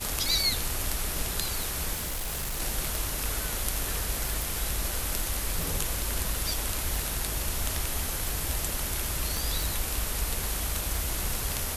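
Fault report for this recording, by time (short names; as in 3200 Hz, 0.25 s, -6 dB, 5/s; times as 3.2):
tick 45 rpm
1.93–2.61 clipped -28.5 dBFS
4.42 pop
9.37 pop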